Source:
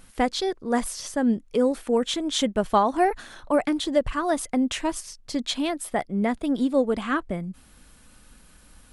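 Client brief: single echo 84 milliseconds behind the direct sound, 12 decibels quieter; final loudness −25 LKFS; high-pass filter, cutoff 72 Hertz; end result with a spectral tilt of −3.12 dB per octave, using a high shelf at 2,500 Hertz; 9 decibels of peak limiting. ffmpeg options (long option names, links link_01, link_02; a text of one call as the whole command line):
ffmpeg -i in.wav -af "highpass=72,highshelf=frequency=2500:gain=7,alimiter=limit=-16dB:level=0:latency=1,aecho=1:1:84:0.251,volume=1dB" out.wav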